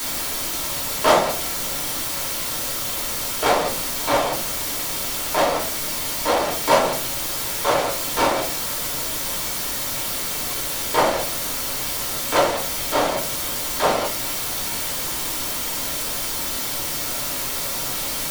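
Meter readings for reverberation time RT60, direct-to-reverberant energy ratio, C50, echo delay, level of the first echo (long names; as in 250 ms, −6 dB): 0.40 s, −3.5 dB, 9.5 dB, no echo audible, no echo audible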